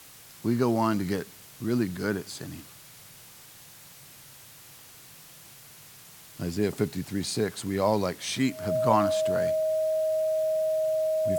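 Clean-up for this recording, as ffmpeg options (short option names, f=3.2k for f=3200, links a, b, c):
-af "bandreject=f=630:w=30,afftdn=nr=23:nf=-50"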